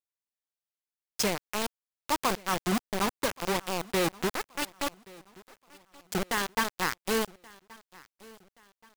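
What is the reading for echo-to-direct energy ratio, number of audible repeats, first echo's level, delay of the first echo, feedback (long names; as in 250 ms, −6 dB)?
−22.5 dB, 2, −23.0 dB, 1,127 ms, 39%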